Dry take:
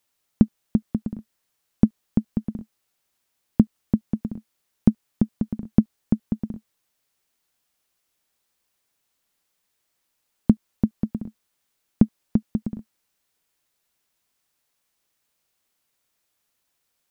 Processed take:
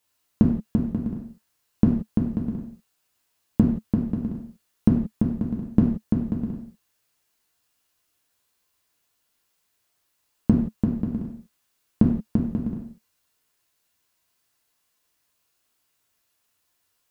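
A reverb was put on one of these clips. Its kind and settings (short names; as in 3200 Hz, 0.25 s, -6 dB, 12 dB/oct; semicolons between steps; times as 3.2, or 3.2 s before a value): non-linear reverb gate 0.2 s falling, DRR -2.5 dB; gain -2 dB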